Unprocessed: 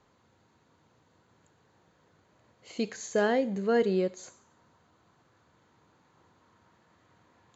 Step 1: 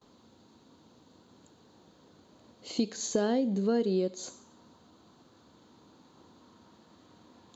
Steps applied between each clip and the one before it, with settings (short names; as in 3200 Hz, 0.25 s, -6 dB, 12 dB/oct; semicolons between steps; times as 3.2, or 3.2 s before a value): gate with hold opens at -59 dBFS; graphic EQ 125/250/2000/4000 Hz -5/+9/-9/+8 dB; compressor 3:1, threshold -32 dBFS, peak gain reduction 11.5 dB; gain +4.5 dB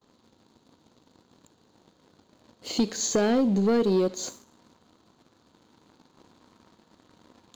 sample leveller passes 2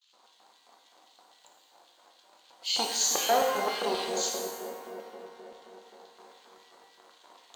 dark delay 0.16 s, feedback 81%, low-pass 470 Hz, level -6 dB; LFO high-pass square 3.8 Hz 770–3100 Hz; shimmer reverb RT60 1.1 s, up +12 st, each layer -8 dB, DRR 1.5 dB